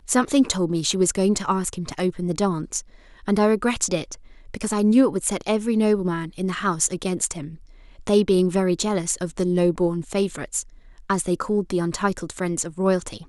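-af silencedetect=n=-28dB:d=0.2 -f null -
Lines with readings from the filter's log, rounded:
silence_start: 2.80
silence_end: 3.28 | silence_duration: 0.48
silence_start: 4.14
silence_end: 4.54 | silence_duration: 0.41
silence_start: 7.47
silence_end: 8.07 | silence_duration: 0.60
silence_start: 10.62
silence_end: 11.10 | silence_duration: 0.48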